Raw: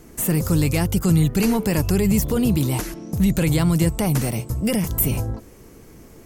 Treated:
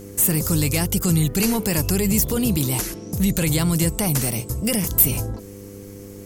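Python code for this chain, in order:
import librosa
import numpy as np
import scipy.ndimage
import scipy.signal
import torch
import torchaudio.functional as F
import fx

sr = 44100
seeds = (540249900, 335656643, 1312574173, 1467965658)

y = fx.high_shelf(x, sr, hz=3200.0, db=10.0)
y = 10.0 ** (-2.0 / 20.0) * np.tanh(y / 10.0 ** (-2.0 / 20.0))
y = fx.dmg_buzz(y, sr, base_hz=100.0, harmonics=5, level_db=-37.0, tilt_db=-1, odd_only=False)
y = F.gain(torch.from_numpy(y), -2.0).numpy()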